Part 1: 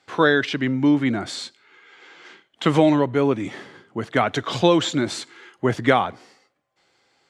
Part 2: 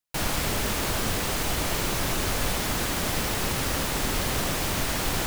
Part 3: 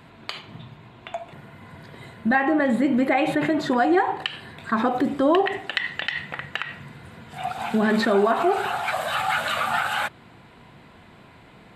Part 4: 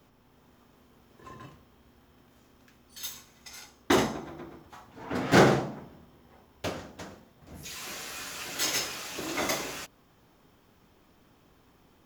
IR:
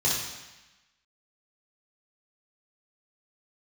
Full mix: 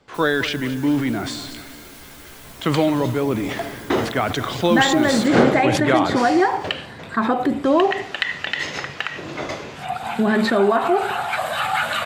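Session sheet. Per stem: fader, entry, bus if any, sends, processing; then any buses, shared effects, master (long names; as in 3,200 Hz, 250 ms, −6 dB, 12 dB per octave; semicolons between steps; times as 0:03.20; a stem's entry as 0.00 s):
−2.5 dB, 0.00 s, no send, echo send −14.5 dB, level that may fall only so fast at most 42 dB per second
−10.0 dB, 0.00 s, no send, echo send −16 dB, high-shelf EQ 8,000 Hz +6 dB; stiff-string resonator 70 Hz, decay 0.25 s, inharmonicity 0.002
+2.5 dB, 2.45 s, no send, no echo send, no processing
+1.0 dB, 0.00 s, no send, no echo send, low-pass filter 3,900 Hz 12 dB per octave; parametric band 490 Hz +5 dB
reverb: not used
echo: repeating echo 216 ms, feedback 55%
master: no processing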